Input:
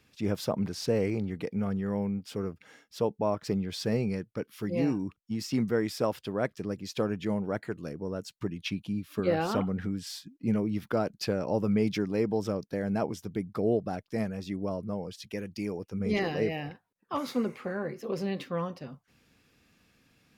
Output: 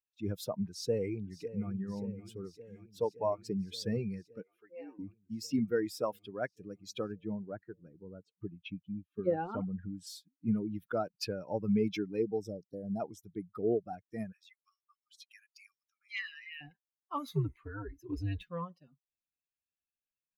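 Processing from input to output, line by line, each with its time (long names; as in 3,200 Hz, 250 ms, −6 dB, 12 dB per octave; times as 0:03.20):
0:00.66–0:01.72: delay throw 570 ms, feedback 85%, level −8 dB
0:04.42–0:04.99: three-way crossover with the lows and the highs turned down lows −21 dB, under 420 Hz, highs −13 dB, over 2,600 Hz
0:07.12–0:09.93: low-pass filter 1,400 Hz 6 dB per octave
0:12.22–0:13.00: flat-topped bell 1,700 Hz −14.5 dB
0:14.32–0:16.61: linear-phase brick-wall high-pass 1,100 Hz
0:17.29–0:18.49: frequency shifter −96 Hz
whole clip: spectral dynamics exaggerated over time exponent 2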